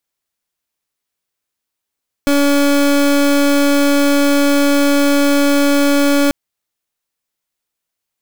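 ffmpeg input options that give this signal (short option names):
-f lavfi -i "aevalsrc='0.251*(2*lt(mod(284*t,1),0.3)-1)':d=4.04:s=44100"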